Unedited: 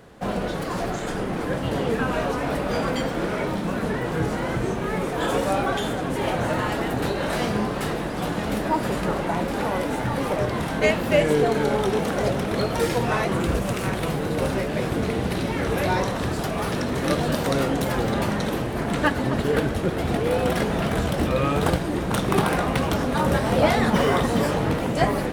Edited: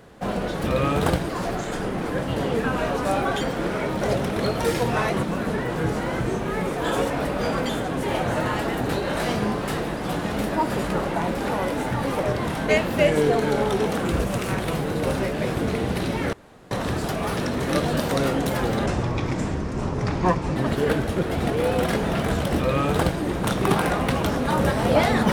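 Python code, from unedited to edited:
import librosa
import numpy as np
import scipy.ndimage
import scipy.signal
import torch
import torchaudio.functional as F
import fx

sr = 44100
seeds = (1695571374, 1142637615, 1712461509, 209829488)

y = fx.edit(x, sr, fx.swap(start_s=2.4, length_s=0.59, other_s=5.46, other_length_s=0.36),
    fx.move(start_s=12.16, length_s=1.22, to_s=3.59),
    fx.room_tone_fill(start_s=15.68, length_s=0.38),
    fx.speed_span(start_s=18.21, length_s=1.02, speed=0.6),
    fx.duplicate(start_s=21.24, length_s=0.65, to_s=0.64), tone=tone)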